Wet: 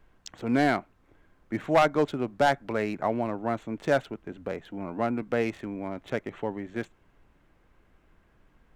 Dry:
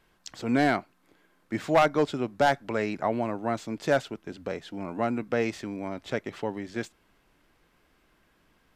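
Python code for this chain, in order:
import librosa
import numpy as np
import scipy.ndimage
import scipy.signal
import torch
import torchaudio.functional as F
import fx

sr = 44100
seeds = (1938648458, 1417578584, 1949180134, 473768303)

y = fx.wiener(x, sr, points=9)
y = fx.dmg_noise_colour(y, sr, seeds[0], colour='brown', level_db=-62.0)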